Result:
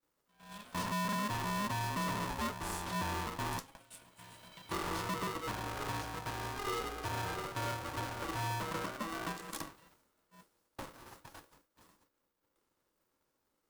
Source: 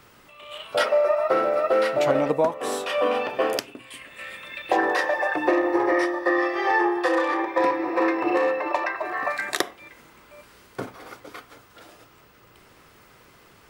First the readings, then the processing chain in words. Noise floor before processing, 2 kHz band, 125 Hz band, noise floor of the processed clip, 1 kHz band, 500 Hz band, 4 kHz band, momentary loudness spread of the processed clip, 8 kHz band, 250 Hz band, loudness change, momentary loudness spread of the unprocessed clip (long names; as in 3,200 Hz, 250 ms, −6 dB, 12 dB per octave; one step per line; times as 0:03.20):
−54 dBFS, −15.5 dB, +4.0 dB, −82 dBFS, −12.5 dB, −22.0 dB, −8.5 dB, 18 LU, −4.5 dB, −14.5 dB, −15.0 dB, 17 LU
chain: downward expander −41 dBFS
parametric band 2,300 Hz −10 dB 1.7 octaves
gain into a clipping stage and back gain 27 dB
phaser with its sweep stopped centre 730 Hz, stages 4
ring modulator with a square carrier 410 Hz
level −5 dB